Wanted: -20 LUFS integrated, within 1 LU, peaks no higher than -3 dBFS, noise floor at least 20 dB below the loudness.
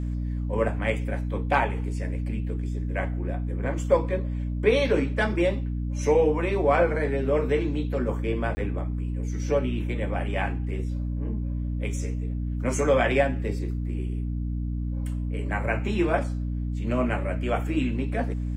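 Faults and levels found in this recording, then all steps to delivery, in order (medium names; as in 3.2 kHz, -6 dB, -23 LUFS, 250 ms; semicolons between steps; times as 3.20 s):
dropouts 1; longest dropout 20 ms; hum 60 Hz; highest harmonic 300 Hz; hum level -26 dBFS; loudness -27.0 LUFS; peak level -7.5 dBFS; loudness target -20.0 LUFS
-> interpolate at 8.55 s, 20 ms; hum notches 60/120/180/240/300 Hz; trim +7 dB; peak limiter -3 dBFS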